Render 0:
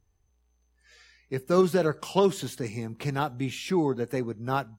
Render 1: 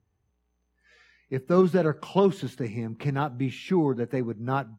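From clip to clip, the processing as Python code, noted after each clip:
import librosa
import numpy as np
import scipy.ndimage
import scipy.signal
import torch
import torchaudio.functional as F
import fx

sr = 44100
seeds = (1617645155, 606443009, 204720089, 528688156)

y = scipy.signal.sosfilt(scipy.signal.bessel(2, 160.0, 'highpass', norm='mag', fs=sr, output='sos'), x)
y = fx.bass_treble(y, sr, bass_db=8, treble_db=-12)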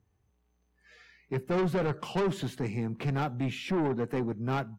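y = 10.0 ** (-26.0 / 20.0) * np.tanh(x / 10.0 ** (-26.0 / 20.0))
y = y * 10.0 ** (1.5 / 20.0)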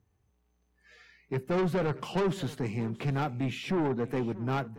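y = x + 10.0 ** (-18.0 / 20.0) * np.pad(x, (int(629 * sr / 1000.0), 0))[:len(x)]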